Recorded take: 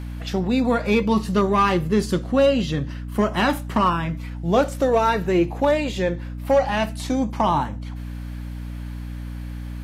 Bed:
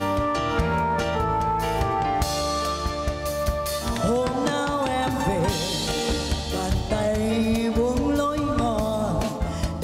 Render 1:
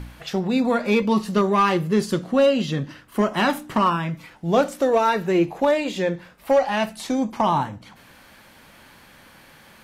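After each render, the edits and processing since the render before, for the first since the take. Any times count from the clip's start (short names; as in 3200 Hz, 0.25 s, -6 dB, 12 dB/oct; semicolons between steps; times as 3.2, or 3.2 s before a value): de-hum 60 Hz, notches 5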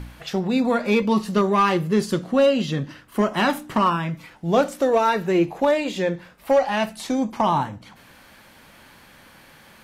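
nothing audible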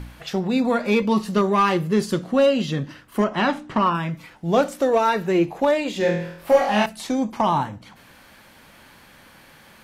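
3.24–3.95 air absorption 96 m; 5.98–6.86 flutter echo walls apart 4.1 m, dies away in 0.64 s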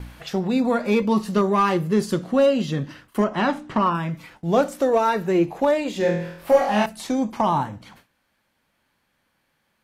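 dynamic EQ 3000 Hz, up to -4 dB, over -35 dBFS, Q 0.75; gate with hold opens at -35 dBFS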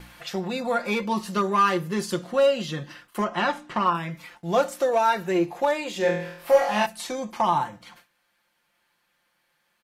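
low shelf 440 Hz -11.5 dB; comb 5.7 ms, depth 53%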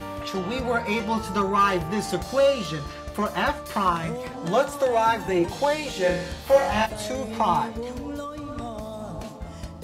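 add bed -10.5 dB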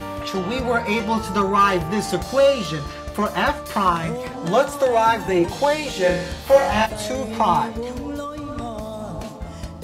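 gain +4 dB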